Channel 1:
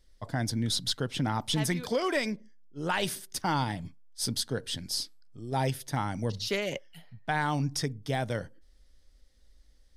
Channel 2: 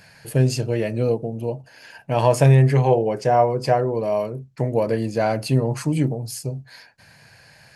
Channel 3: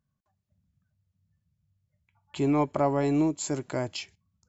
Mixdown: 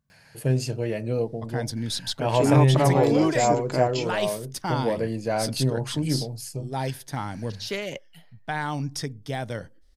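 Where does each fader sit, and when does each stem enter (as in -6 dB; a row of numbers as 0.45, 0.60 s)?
0.0, -5.0, +2.5 dB; 1.20, 0.10, 0.00 s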